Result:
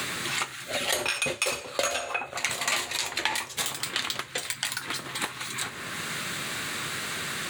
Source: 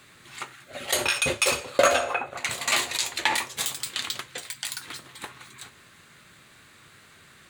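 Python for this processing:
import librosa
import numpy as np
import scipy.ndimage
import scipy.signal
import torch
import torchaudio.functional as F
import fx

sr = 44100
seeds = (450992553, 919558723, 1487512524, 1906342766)

y = fx.band_squash(x, sr, depth_pct=100)
y = y * 10.0 ** (-1.5 / 20.0)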